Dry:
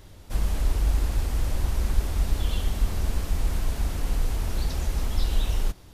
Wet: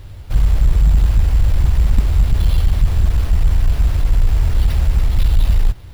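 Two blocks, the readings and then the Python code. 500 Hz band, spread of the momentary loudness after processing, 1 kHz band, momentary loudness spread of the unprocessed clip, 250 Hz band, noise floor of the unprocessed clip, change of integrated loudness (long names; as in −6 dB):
+3.5 dB, 3 LU, +4.0 dB, 3 LU, +6.5 dB, −47 dBFS, +11.5 dB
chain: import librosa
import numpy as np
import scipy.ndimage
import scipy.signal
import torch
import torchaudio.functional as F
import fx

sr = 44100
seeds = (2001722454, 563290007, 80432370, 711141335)

y = fx.low_shelf_res(x, sr, hz=150.0, db=8.0, q=1.5)
y = fx.cheby_harmonics(y, sr, harmonics=(5,), levels_db=(-13,), full_scale_db=-1.0)
y = fx.sample_hold(y, sr, seeds[0], rate_hz=7500.0, jitter_pct=0)
y = F.gain(torch.from_numpy(y), -1.0).numpy()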